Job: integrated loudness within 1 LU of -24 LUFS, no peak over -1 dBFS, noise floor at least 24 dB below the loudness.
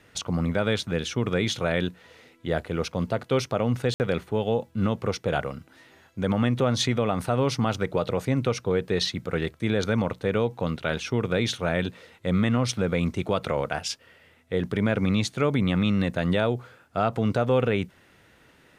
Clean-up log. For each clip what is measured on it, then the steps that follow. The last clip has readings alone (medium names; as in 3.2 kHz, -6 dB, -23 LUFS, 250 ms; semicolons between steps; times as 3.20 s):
dropouts 1; longest dropout 59 ms; loudness -26.0 LUFS; peak level -10.0 dBFS; loudness target -24.0 LUFS
-> interpolate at 3.94 s, 59 ms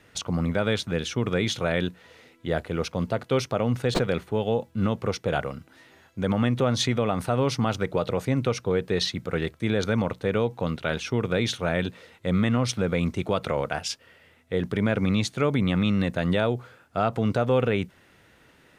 dropouts 0; loudness -26.0 LUFS; peak level -10.0 dBFS; loudness target -24.0 LUFS
-> trim +2 dB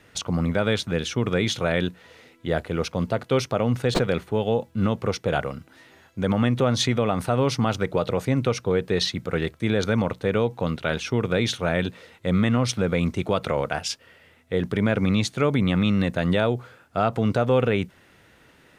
loudness -24.0 LUFS; peak level -8.0 dBFS; noise floor -56 dBFS